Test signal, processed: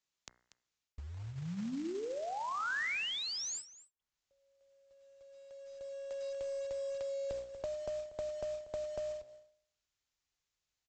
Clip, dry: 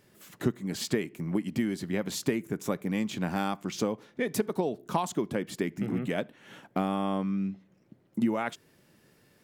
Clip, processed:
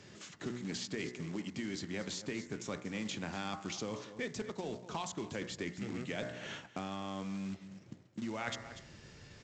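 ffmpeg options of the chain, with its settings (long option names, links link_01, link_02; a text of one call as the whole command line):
ffmpeg -i in.wav -filter_complex "[0:a]highpass=frequency=42:poles=1,equalizer=frequency=620:width=0.32:gain=-4.5,bandreject=frequency=60.86:width_type=h:width=4,bandreject=frequency=121.72:width_type=h:width=4,bandreject=frequency=182.58:width_type=h:width=4,bandreject=frequency=243.44:width_type=h:width=4,bandreject=frequency=304.3:width_type=h:width=4,bandreject=frequency=365.16:width_type=h:width=4,bandreject=frequency=426.02:width_type=h:width=4,bandreject=frequency=486.88:width_type=h:width=4,bandreject=frequency=547.74:width_type=h:width=4,bandreject=frequency=608.6:width_type=h:width=4,bandreject=frequency=669.46:width_type=h:width=4,bandreject=frequency=730.32:width_type=h:width=4,bandreject=frequency=791.18:width_type=h:width=4,bandreject=frequency=852.04:width_type=h:width=4,bandreject=frequency=912.9:width_type=h:width=4,bandreject=frequency=973.76:width_type=h:width=4,bandreject=frequency=1034.62:width_type=h:width=4,bandreject=frequency=1095.48:width_type=h:width=4,bandreject=frequency=1156.34:width_type=h:width=4,bandreject=frequency=1217.2:width_type=h:width=4,bandreject=frequency=1278.06:width_type=h:width=4,bandreject=frequency=1338.92:width_type=h:width=4,bandreject=frequency=1399.78:width_type=h:width=4,bandreject=frequency=1460.64:width_type=h:width=4,bandreject=frequency=1521.5:width_type=h:width=4,bandreject=frequency=1582.36:width_type=h:width=4,bandreject=frequency=1643.22:width_type=h:width=4,bandreject=frequency=1704.08:width_type=h:width=4,bandreject=frequency=1764.94:width_type=h:width=4,bandreject=frequency=1825.8:width_type=h:width=4,bandreject=frequency=1886.66:width_type=h:width=4,bandreject=frequency=1947.52:width_type=h:width=4,bandreject=frequency=2008.38:width_type=h:width=4,bandreject=frequency=2069.24:width_type=h:width=4,bandreject=frequency=2130.1:width_type=h:width=4,areverse,acompressor=threshold=-42dB:ratio=6,areverse,asubboost=boost=4.5:cutoff=89,aecho=1:1:239:0.141,acrossover=split=200|1700[link_01][link_02][link_03];[link_01]acompressor=threshold=-59dB:ratio=4[link_04];[link_02]acompressor=threshold=-49dB:ratio=4[link_05];[link_03]acompressor=threshold=-50dB:ratio=4[link_06];[link_04][link_05][link_06]amix=inputs=3:normalize=0,aresample=16000,acrusher=bits=4:mode=log:mix=0:aa=0.000001,aresample=44100,volume=10.5dB" out.wav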